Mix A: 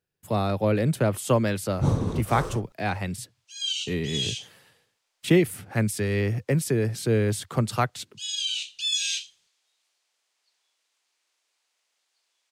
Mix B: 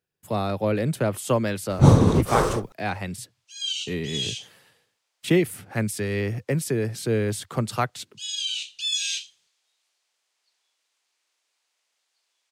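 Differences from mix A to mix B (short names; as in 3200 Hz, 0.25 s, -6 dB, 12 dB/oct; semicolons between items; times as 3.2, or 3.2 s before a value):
first sound +11.0 dB; master: add low shelf 95 Hz -6 dB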